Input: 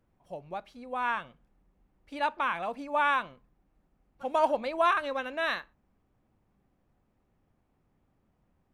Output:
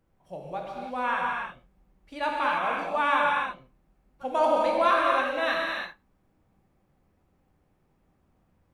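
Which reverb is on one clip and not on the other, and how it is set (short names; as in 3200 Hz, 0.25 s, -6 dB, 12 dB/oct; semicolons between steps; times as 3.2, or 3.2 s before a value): non-linear reverb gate 0.34 s flat, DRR -2.5 dB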